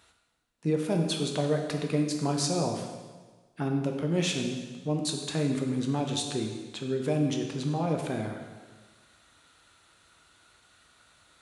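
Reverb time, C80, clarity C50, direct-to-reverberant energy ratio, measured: 1.4 s, 6.0 dB, 4.5 dB, 2.0 dB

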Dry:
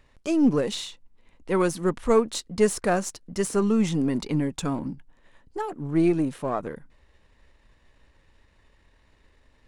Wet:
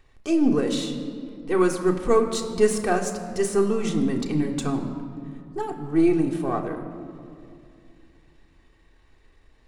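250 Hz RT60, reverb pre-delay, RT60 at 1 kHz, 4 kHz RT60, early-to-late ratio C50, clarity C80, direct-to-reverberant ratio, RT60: 3.2 s, 3 ms, 2.2 s, 1.3 s, 8.5 dB, 9.5 dB, 1.5 dB, 2.4 s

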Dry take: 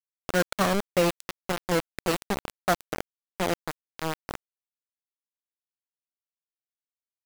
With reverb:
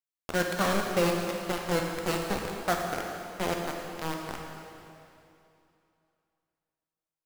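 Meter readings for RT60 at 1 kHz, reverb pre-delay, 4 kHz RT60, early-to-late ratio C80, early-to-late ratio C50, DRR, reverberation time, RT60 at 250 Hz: 2.7 s, 7 ms, 2.6 s, 3.0 dB, 2.0 dB, 0.5 dB, 2.7 s, 2.8 s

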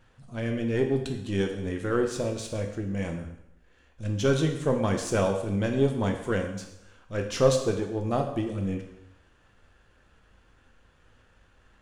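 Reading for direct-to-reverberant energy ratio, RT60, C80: 3.5 dB, 0.80 s, 10.0 dB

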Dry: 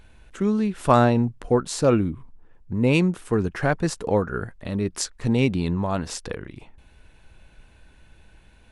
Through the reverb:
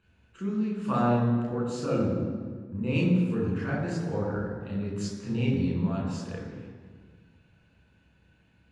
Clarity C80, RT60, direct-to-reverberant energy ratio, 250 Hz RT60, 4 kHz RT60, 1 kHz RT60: 3.0 dB, 1.7 s, -4.5 dB, 2.1 s, 1.2 s, 1.6 s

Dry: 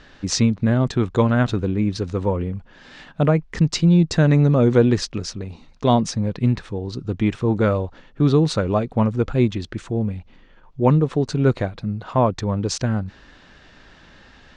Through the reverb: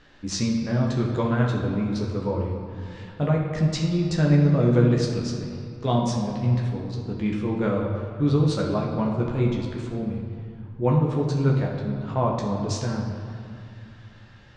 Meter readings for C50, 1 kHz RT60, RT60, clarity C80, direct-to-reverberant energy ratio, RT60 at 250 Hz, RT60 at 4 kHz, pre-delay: 2.5 dB, 2.5 s, 2.5 s, 4.5 dB, -2.0 dB, 2.9 s, 1.6 s, 14 ms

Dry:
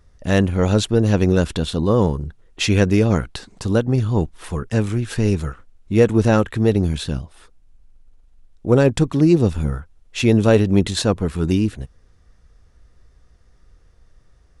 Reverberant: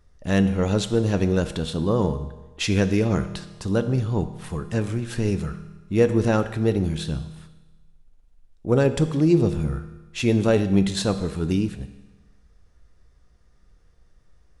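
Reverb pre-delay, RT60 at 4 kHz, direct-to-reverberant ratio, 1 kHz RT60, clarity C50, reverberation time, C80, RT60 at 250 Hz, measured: 5 ms, 1.2 s, 9.5 dB, 1.2 s, 12.0 dB, 1.2 s, 13.5 dB, 1.2 s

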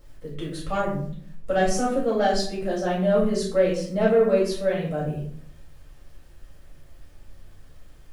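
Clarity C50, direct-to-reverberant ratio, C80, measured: 4.0 dB, -7.0 dB, 8.0 dB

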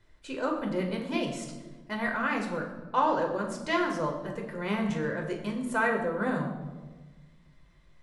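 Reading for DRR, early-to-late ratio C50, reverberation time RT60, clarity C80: 0.5 dB, 6.5 dB, 1.3 s, 8.5 dB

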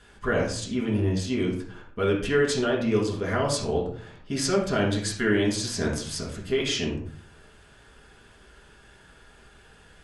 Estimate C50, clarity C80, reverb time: 5.0 dB, 10.0 dB, 0.55 s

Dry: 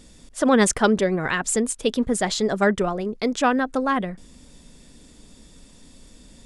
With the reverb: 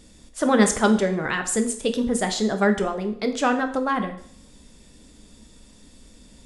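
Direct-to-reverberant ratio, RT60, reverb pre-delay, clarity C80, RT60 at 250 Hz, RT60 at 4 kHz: 6.0 dB, 0.60 s, 5 ms, 14.5 dB, 0.65 s, 0.60 s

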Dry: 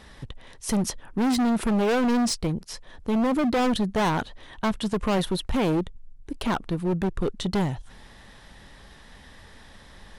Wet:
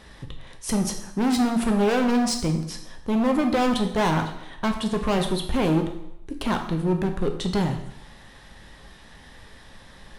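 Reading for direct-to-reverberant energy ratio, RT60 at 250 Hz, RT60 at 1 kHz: 4.0 dB, 0.80 s, 0.80 s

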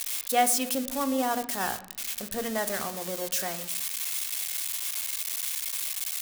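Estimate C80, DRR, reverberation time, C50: 16.5 dB, 9.0 dB, 0.80 s, 13.5 dB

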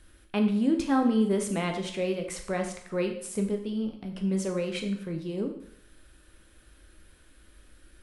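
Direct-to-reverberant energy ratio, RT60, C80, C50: 3.5 dB, 0.65 s, 10.5 dB, 8.5 dB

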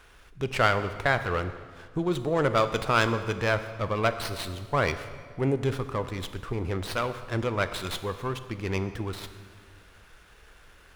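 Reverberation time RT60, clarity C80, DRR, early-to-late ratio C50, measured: 1.8 s, 12.5 dB, 10.0 dB, 11.5 dB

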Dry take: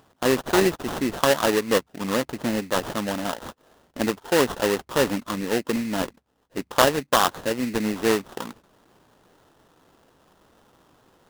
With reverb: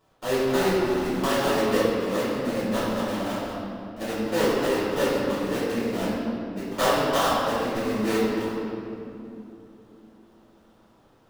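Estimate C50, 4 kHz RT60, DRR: -3.0 dB, 1.7 s, -13.5 dB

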